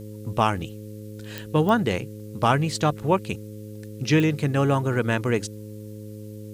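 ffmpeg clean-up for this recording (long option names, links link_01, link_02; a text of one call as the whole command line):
ffmpeg -i in.wav -af "adeclick=threshold=4,bandreject=frequency=106:width_type=h:width=4,bandreject=frequency=212:width_type=h:width=4,bandreject=frequency=318:width_type=h:width=4,bandreject=frequency=424:width_type=h:width=4,bandreject=frequency=530:width_type=h:width=4,agate=range=-21dB:threshold=-30dB" out.wav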